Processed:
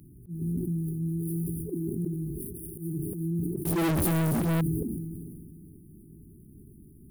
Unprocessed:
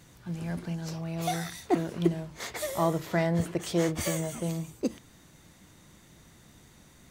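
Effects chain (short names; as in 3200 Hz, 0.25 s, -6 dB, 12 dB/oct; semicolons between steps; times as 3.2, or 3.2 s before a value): median filter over 15 samples; FFT band-reject 420–9000 Hz; auto swell 0.175 s; limiter -29.5 dBFS, peak gain reduction 11.5 dB; on a send: diffused feedback echo 0.493 s, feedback 43%, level -15 dB; 2.35–2.95 on the sum: dynamic EQ 270 Hz, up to -6 dB, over -53 dBFS, Q 2; 3.65–4.61 sample leveller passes 5; high shelf 2400 Hz +10 dB; sustainer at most 25 dB/s; gain +5 dB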